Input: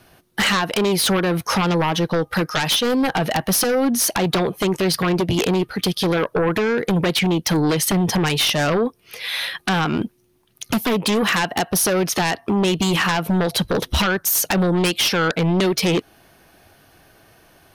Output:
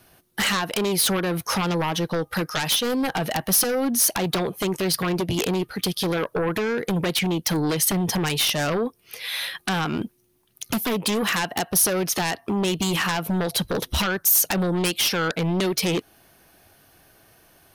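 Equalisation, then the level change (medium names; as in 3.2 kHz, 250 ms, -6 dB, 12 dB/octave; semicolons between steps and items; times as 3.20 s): treble shelf 7.7 kHz +9 dB; -5.0 dB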